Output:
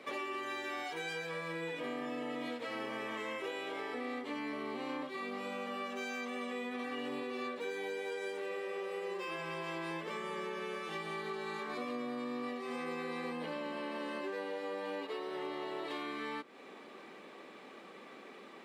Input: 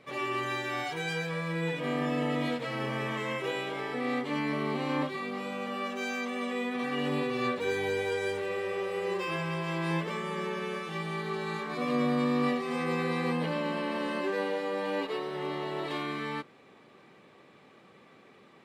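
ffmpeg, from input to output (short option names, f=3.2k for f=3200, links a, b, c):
-af "highpass=f=220:w=0.5412,highpass=f=220:w=1.3066,acompressor=threshold=-43dB:ratio=6,volume=5dB"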